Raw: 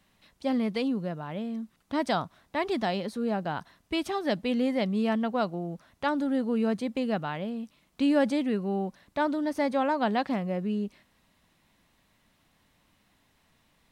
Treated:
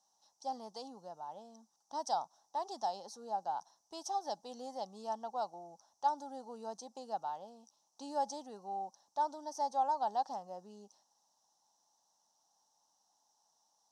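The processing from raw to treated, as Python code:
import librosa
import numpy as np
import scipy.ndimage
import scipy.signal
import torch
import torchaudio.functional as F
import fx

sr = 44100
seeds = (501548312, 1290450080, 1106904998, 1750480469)

y = fx.double_bandpass(x, sr, hz=2200.0, octaves=2.8)
y = fx.high_shelf(y, sr, hz=4100.0, db=10.0)
y = F.gain(torch.from_numpy(y), 1.5).numpy()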